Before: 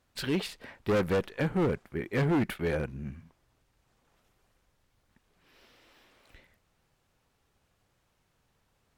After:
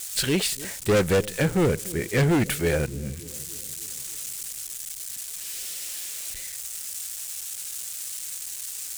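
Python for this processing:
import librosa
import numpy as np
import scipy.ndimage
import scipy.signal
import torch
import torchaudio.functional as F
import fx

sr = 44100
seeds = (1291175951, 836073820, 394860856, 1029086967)

y = x + 0.5 * 10.0 ** (-37.0 / 20.0) * np.diff(np.sign(x), prepend=np.sign(x[:1]))
y = fx.graphic_eq_10(y, sr, hz=(250, 1000, 8000), db=(-5, -6, 9))
y = fx.echo_bbd(y, sr, ms=294, stages=1024, feedback_pct=59, wet_db=-18)
y = y * 10.0 ** (8.5 / 20.0)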